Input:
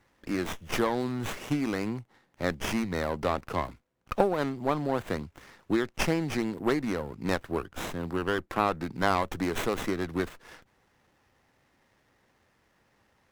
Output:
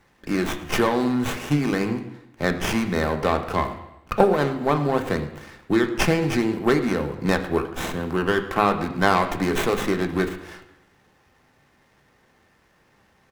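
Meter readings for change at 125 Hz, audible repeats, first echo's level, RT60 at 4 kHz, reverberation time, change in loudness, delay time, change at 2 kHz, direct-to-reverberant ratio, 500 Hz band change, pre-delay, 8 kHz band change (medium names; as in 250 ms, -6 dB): +8.0 dB, 3, -18.5 dB, 0.85 s, 0.85 s, +7.5 dB, 112 ms, +8.0 dB, 4.5 dB, +7.5 dB, 3 ms, +6.0 dB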